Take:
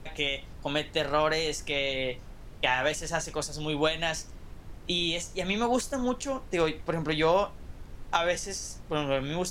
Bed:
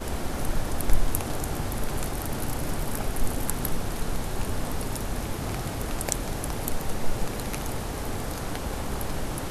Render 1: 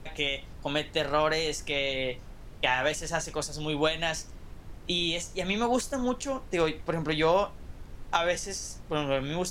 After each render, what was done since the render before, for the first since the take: no audible change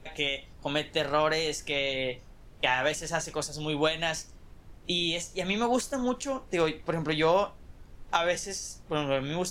noise print and reduce 6 dB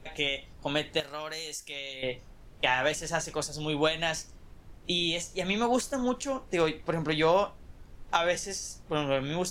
1.00–2.03 s: pre-emphasis filter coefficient 0.8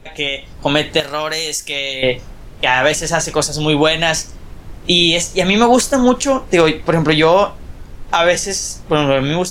level rider gain up to 9 dB; loudness maximiser +8.5 dB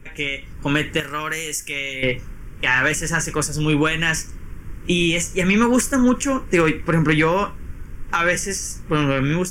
static phaser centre 1.7 kHz, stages 4; saturation -4.5 dBFS, distortion -26 dB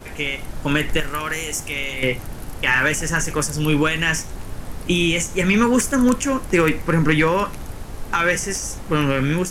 add bed -6 dB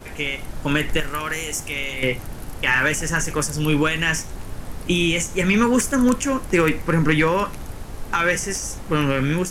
trim -1 dB

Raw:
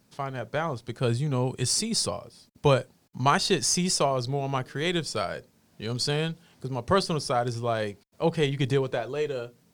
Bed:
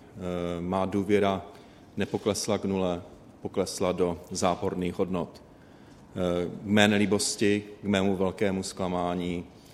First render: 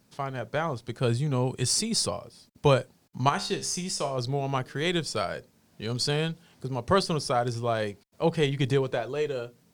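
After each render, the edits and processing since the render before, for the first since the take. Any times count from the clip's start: 3.29–4.18 s: feedback comb 66 Hz, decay 0.38 s, mix 70%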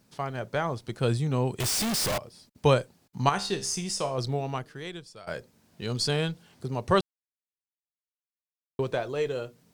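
1.60–2.18 s: one-bit comparator; 4.32–5.27 s: fade out quadratic, to -18.5 dB; 7.01–8.79 s: mute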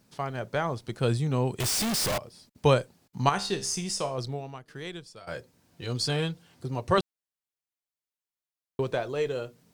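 3.96–4.68 s: fade out, to -15 dB; 5.19–6.98 s: comb of notches 210 Hz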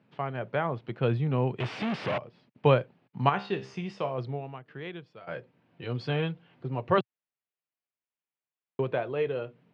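Chebyshev band-pass 120–2800 Hz, order 3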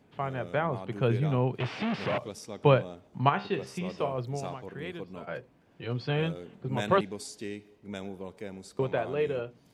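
add bed -14 dB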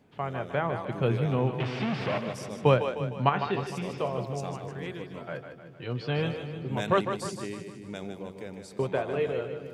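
two-band feedback delay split 340 Hz, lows 346 ms, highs 153 ms, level -8 dB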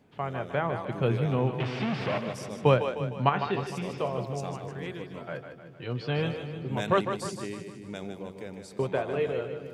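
no audible change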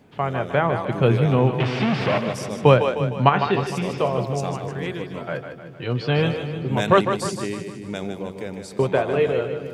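trim +8.5 dB; peak limiter -2 dBFS, peak gain reduction 1.5 dB

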